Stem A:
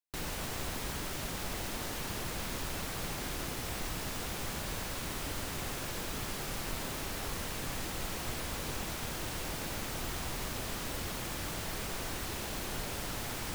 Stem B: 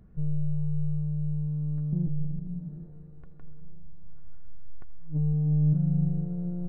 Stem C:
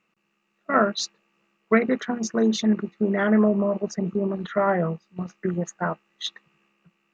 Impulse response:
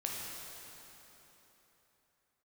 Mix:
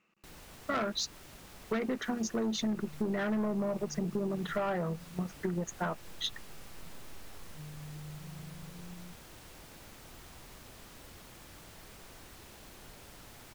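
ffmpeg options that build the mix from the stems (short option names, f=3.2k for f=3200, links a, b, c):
-filter_complex "[0:a]adelay=100,volume=-14dB[a];[1:a]acompressor=threshold=-29dB:ratio=6,adelay=2450,volume=-14.5dB[b];[2:a]asoftclip=type=tanh:threshold=-18.5dB,volume=-1.5dB[c];[a][b][c]amix=inputs=3:normalize=0,acompressor=threshold=-30dB:ratio=6"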